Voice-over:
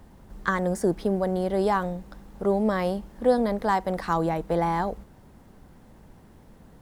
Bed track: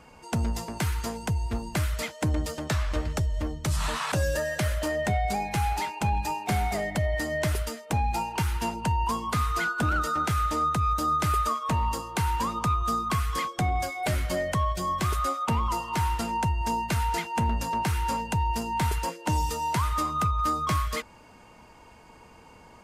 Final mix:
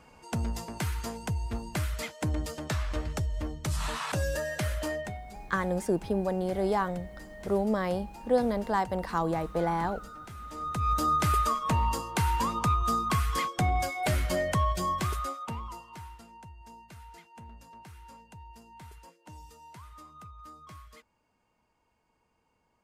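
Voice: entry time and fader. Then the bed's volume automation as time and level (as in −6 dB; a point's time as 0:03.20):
5.05 s, −4.0 dB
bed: 0:04.93 −4 dB
0:05.24 −18.5 dB
0:10.40 −18.5 dB
0:10.92 −0.5 dB
0:14.85 −0.5 dB
0:16.29 −22.5 dB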